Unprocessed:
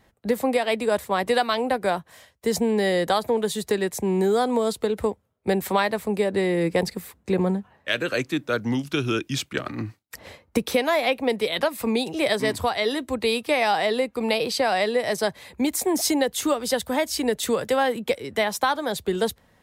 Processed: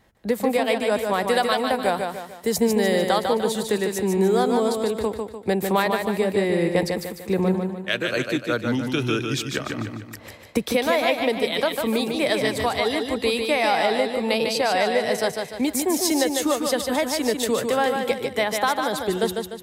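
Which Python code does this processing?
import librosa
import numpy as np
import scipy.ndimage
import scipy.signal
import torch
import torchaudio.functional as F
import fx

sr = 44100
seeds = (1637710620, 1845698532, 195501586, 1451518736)

p1 = fx.high_shelf(x, sr, hz=11000.0, db=9.0, at=(1.25, 2.98))
y = p1 + fx.echo_feedback(p1, sr, ms=149, feedback_pct=43, wet_db=-5.0, dry=0)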